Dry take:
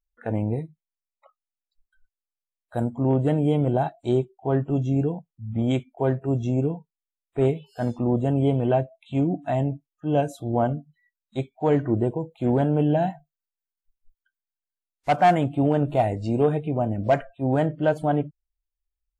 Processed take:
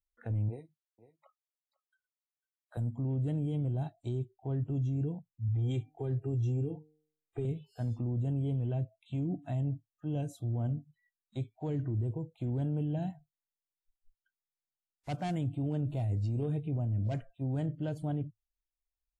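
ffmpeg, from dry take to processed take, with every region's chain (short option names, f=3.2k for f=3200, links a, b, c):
-filter_complex "[0:a]asettb=1/sr,asplit=3[a][b][c];[a]atrim=end=0.484[d];[b]atrim=start=0.48:end=2.77,asetpts=PTS-STARTPTS,afade=t=in:d=0.004:c=qsin,afade=t=out:st=2.286:d=0.004:c=qsin,highpass=380,aecho=1:1:499:0.0944,atrim=end_sample=100989[e];[c]atrim=start=2.766[f];[d][e]acrossfade=d=0.004:c1=hsin:c2=qsin[g];[g][f]acrossfade=d=0.004:c1=qsin:c2=hsin,asettb=1/sr,asplit=3[h][i][j];[h]atrim=end=5.484[k];[i]atrim=start=5.48:end=7.45,asetpts=PTS-STARTPTS,afade=t=in:d=0.004:c=qsin,afade=t=out:st=1.966:d=0.004:c=qsin,aecho=1:1:2.5:0.96,atrim=end_sample=86877,bandreject=f=153.2:t=h:w=4,bandreject=f=306.4:t=h:w=4,bandreject=f=459.6:t=h:w=4,bandreject=f=612.8:t=h:w=4,bandreject=f=766:t=h:w=4[l];[j]atrim=start=7.446[m];[k][l]acrossfade=d=0.004:c1=hsin:c2=qsin[n];[n][m]acrossfade=d=0.004:c1=qsin:c2=hsin,equalizer=f=110:w=2.9:g=12.5,acrossover=split=360|3000[o][p][q];[p]acompressor=threshold=-45dB:ratio=2[r];[o][r][q]amix=inputs=3:normalize=0,alimiter=limit=-18dB:level=0:latency=1:release=12,volume=-8.5dB"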